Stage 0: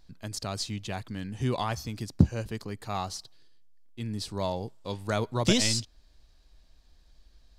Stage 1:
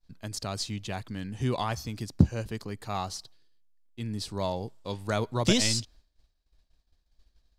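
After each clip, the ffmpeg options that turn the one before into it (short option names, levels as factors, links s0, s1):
-af "agate=range=0.0224:threshold=0.00447:ratio=3:detection=peak"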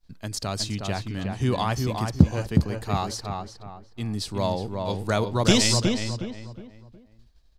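-filter_complex "[0:a]asplit=2[s0][s1];[s1]adelay=364,lowpass=f=2000:p=1,volume=0.631,asplit=2[s2][s3];[s3]adelay=364,lowpass=f=2000:p=1,volume=0.35,asplit=2[s4][s5];[s5]adelay=364,lowpass=f=2000:p=1,volume=0.35,asplit=2[s6][s7];[s7]adelay=364,lowpass=f=2000:p=1,volume=0.35[s8];[s0][s2][s4][s6][s8]amix=inputs=5:normalize=0,volume=1.68"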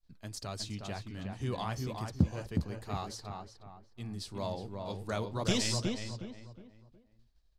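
-af "flanger=delay=1.6:depth=8.4:regen=-56:speed=2:shape=sinusoidal,volume=0.447"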